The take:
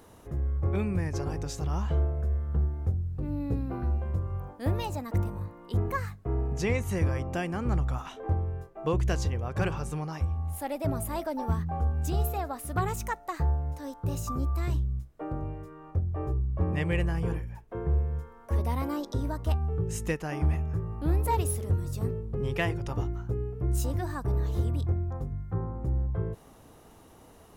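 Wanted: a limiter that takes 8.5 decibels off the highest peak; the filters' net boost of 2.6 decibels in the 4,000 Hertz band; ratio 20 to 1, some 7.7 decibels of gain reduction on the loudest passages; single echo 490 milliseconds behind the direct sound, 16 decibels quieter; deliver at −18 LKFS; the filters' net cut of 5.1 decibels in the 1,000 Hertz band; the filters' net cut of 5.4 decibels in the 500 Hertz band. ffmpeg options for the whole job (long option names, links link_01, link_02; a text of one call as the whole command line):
ffmpeg -i in.wav -af "equalizer=frequency=500:width_type=o:gain=-6,equalizer=frequency=1000:width_type=o:gain=-4.5,equalizer=frequency=4000:width_type=o:gain=4,acompressor=threshold=-29dB:ratio=20,alimiter=level_in=3dB:limit=-24dB:level=0:latency=1,volume=-3dB,aecho=1:1:490:0.158,volume=19dB" out.wav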